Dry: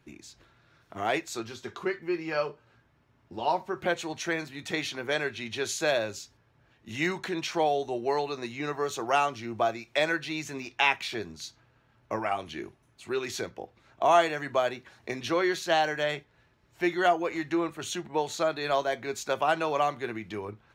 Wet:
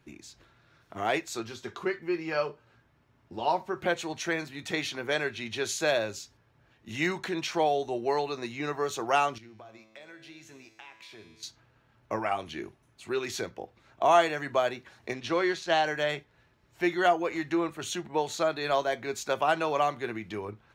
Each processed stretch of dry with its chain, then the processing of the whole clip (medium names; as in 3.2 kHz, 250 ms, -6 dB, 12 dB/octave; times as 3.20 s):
9.38–11.43 s: compression, threshold -32 dBFS + feedback comb 110 Hz, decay 1.8 s, mix 80%
15.13–15.86 s: companding laws mixed up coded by A + low-pass 6.8 kHz
whole clip: none